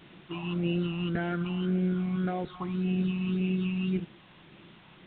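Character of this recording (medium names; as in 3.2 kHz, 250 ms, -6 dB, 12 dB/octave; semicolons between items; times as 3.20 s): phasing stages 8, 1.8 Hz, lowest notch 460–1200 Hz; a quantiser's noise floor 8-bit, dither triangular; G.726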